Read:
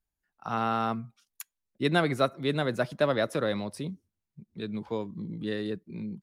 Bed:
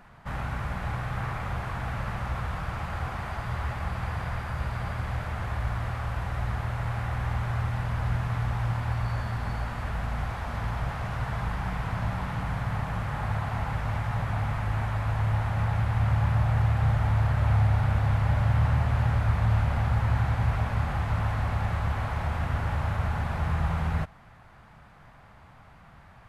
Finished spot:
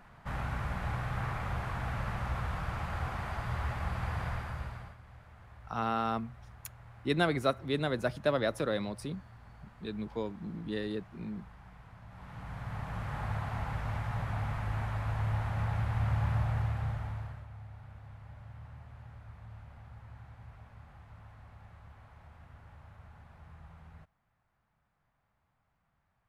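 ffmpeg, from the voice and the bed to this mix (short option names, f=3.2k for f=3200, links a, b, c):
-filter_complex "[0:a]adelay=5250,volume=-3.5dB[a];[1:a]volume=13dB,afade=t=out:st=4.27:d=0.7:silence=0.112202,afade=t=in:st=12.08:d=1.07:silence=0.149624,afade=t=out:st=16.35:d=1.12:silence=0.105925[b];[a][b]amix=inputs=2:normalize=0"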